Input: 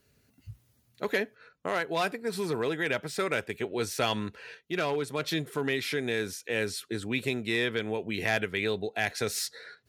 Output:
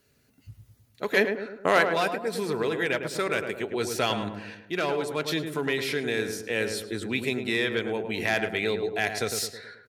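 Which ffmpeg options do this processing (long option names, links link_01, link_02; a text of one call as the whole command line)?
ffmpeg -i in.wav -filter_complex "[0:a]lowshelf=frequency=140:gain=-5,asplit=3[link_01][link_02][link_03];[link_01]afade=type=out:start_time=1.16:duration=0.02[link_04];[link_02]acontrast=88,afade=type=in:start_time=1.16:duration=0.02,afade=type=out:start_time=1.85:duration=0.02[link_05];[link_03]afade=type=in:start_time=1.85:duration=0.02[link_06];[link_04][link_05][link_06]amix=inputs=3:normalize=0,asplit=2[link_07][link_08];[link_08]adelay=106,lowpass=frequency=1300:poles=1,volume=-5.5dB,asplit=2[link_09][link_10];[link_10]adelay=106,lowpass=frequency=1300:poles=1,volume=0.53,asplit=2[link_11][link_12];[link_12]adelay=106,lowpass=frequency=1300:poles=1,volume=0.53,asplit=2[link_13][link_14];[link_14]adelay=106,lowpass=frequency=1300:poles=1,volume=0.53,asplit=2[link_15][link_16];[link_16]adelay=106,lowpass=frequency=1300:poles=1,volume=0.53,asplit=2[link_17][link_18];[link_18]adelay=106,lowpass=frequency=1300:poles=1,volume=0.53,asplit=2[link_19][link_20];[link_20]adelay=106,lowpass=frequency=1300:poles=1,volume=0.53[link_21];[link_07][link_09][link_11][link_13][link_15][link_17][link_19][link_21]amix=inputs=8:normalize=0,volume=2dB" out.wav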